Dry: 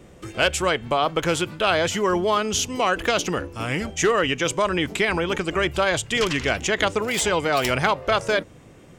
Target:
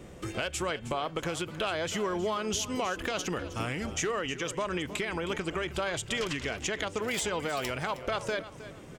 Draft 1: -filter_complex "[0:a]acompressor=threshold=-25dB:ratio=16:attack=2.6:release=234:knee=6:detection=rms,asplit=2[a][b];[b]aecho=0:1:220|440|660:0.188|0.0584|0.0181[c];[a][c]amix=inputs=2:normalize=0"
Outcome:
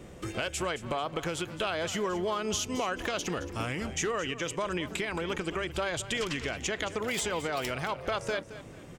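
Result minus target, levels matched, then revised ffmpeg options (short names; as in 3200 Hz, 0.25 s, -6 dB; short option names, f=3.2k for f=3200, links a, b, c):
echo 94 ms early
-filter_complex "[0:a]acompressor=threshold=-25dB:ratio=16:attack=2.6:release=234:knee=6:detection=rms,asplit=2[a][b];[b]aecho=0:1:314|628|942:0.188|0.0584|0.0181[c];[a][c]amix=inputs=2:normalize=0"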